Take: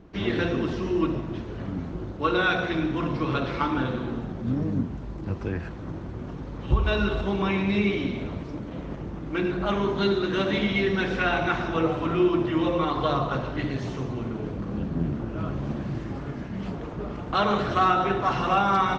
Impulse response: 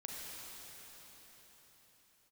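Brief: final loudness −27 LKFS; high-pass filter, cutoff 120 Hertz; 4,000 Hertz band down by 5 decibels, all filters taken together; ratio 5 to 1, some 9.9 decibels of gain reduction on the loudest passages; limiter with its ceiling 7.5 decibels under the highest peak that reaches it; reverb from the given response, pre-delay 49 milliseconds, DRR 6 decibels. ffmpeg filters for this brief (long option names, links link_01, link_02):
-filter_complex "[0:a]highpass=120,equalizer=frequency=4000:width_type=o:gain=-6.5,acompressor=threshold=-29dB:ratio=5,alimiter=level_in=1dB:limit=-24dB:level=0:latency=1,volume=-1dB,asplit=2[link_01][link_02];[1:a]atrim=start_sample=2205,adelay=49[link_03];[link_02][link_03]afir=irnorm=-1:irlink=0,volume=-5.5dB[link_04];[link_01][link_04]amix=inputs=2:normalize=0,volume=7dB"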